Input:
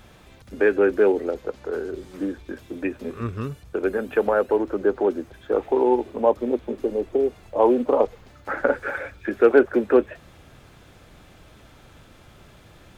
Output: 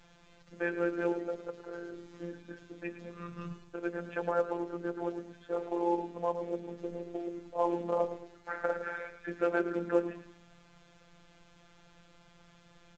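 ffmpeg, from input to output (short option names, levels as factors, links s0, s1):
-filter_complex "[0:a]equalizer=f=350:w=6.5:g=-6.5,bandreject=f=60:t=h:w=6,bandreject=f=120:t=h:w=6,bandreject=f=180:t=h:w=6,bandreject=f=240:t=h:w=6,bandreject=f=300:t=h:w=6,bandreject=f=360:t=h:w=6,bandreject=f=420:t=h:w=6,bandreject=f=480:t=h:w=6,bandreject=f=540:t=h:w=6,bandreject=f=600:t=h:w=6,asplit=5[s0][s1][s2][s3][s4];[s1]adelay=109,afreqshift=-46,volume=0.251[s5];[s2]adelay=218,afreqshift=-92,volume=0.0902[s6];[s3]adelay=327,afreqshift=-138,volume=0.0327[s7];[s4]adelay=436,afreqshift=-184,volume=0.0117[s8];[s0][s5][s6][s7][s8]amix=inputs=5:normalize=0,afftfilt=real='hypot(re,im)*cos(PI*b)':imag='0':win_size=1024:overlap=0.75,volume=0.473" -ar 16000 -c:a pcm_alaw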